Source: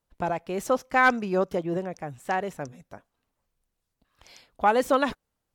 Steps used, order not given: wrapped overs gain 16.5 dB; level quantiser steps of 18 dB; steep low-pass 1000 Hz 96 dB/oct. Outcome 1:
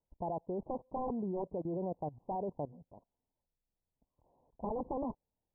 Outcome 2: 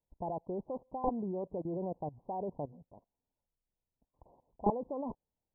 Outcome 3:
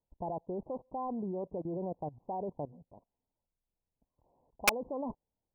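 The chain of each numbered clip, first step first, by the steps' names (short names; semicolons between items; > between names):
wrapped overs > steep low-pass > level quantiser; level quantiser > wrapped overs > steep low-pass; steep low-pass > level quantiser > wrapped overs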